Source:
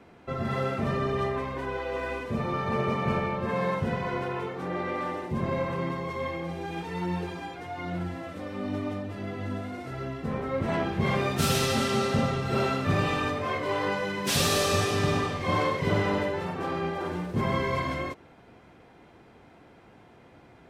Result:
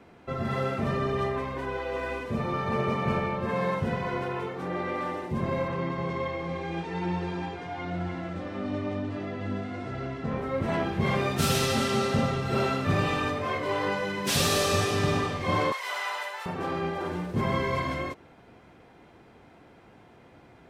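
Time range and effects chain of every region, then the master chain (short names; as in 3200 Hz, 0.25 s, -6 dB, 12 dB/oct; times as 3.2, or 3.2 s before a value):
5.68–10.38 Bessel low-pass 5900 Hz, order 4 + echo 0.3 s -6 dB
15.72–16.46 HPF 800 Hz 24 dB/oct + high shelf 6700 Hz +10.5 dB
whole clip: dry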